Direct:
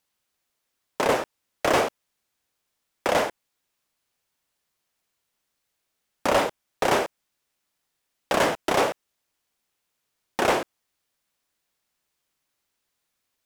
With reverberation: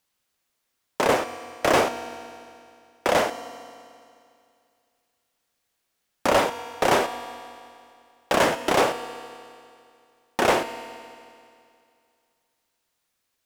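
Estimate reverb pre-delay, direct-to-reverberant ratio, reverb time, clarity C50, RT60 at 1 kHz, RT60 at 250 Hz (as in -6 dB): 4 ms, 10.0 dB, 2.4 s, 11.5 dB, 2.4 s, 2.4 s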